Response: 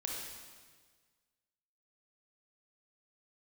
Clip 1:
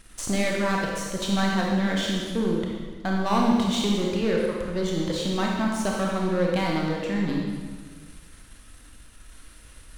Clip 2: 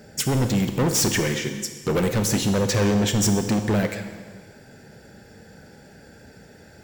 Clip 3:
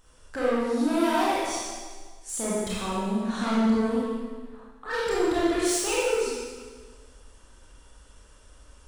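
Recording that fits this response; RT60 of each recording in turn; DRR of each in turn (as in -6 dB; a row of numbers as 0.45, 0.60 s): 1; 1.6, 1.6, 1.6 s; -2.0, 7.5, -7.5 dB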